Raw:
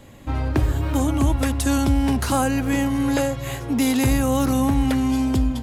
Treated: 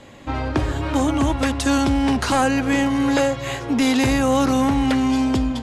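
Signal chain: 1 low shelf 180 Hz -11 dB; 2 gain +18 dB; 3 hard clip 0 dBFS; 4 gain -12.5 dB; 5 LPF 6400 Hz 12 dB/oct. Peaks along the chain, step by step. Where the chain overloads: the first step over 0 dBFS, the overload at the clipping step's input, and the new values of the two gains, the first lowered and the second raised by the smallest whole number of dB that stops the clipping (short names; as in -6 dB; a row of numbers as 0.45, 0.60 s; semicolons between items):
-10.5, +7.5, 0.0, -12.5, -12.0 dBFS; step 2, 7.5 dB; step 2 +10 dB, step 4 -4.5 dB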